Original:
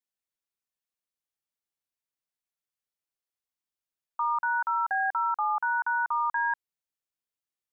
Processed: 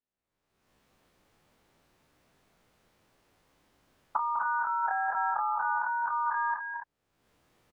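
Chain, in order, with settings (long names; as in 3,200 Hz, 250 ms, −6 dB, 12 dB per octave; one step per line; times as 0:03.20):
every bin's largest magnitude spread in time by 60 ms
camcorder AGC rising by 42 dB per second
low-pass filter 1,200 Hz 6 dB per octave
low-shelf EQ 500 Hz +5.5 dB
loudspeakers that aren't time-aligned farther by 69 metres −9 dB, 90 metres −7 dB
level −3 dB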